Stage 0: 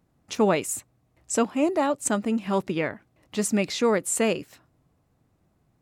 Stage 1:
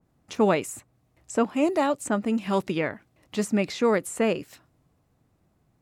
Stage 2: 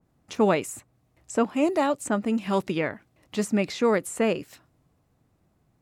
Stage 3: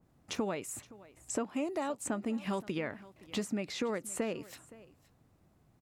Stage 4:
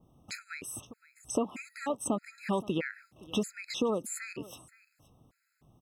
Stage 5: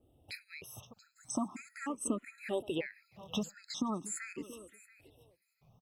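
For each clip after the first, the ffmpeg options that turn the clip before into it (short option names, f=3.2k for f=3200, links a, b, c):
-filter_complex "[0:a]acrossover=split=2100[a][b];[b]acompressor=threshold=-40dB:ratio=6[c];[a][c]amix=inputs=2:normalize=0,adynamicequalizer=threshold=0.0158:dfrequency=1900:dqfactor=0.7:tfrequency=1900:tqfactor=0.7:attack=5:release=100:ratio=0.375:range=2:mode=boostabove:tftype=highshelf"
-af anull
-af "acompressor=threshold=-31dB:ratio=12,aecho=1:1:518:0.1"
-af "afftfilt=real='re*gt(sin(2*PI*1.6*pts/sr)*(1-2*mod(floor(b*sr/1024/1300),2)),0)':imag='im*gt(sin(2*PI*1.6*pts/sr)*(1-2*mod(floor(b*sr/1024/1300),2)),0)':win_size=1024:overlap=0.75,volume=5dB"
-filter_complex "[0:a]aecho=1:1:680|1360:0.112|0.0168,asplit=2[a][b];[b]afreqshift=0.41[c];[a][c]amix=inputs=2:normalize=1,volume=-1dB"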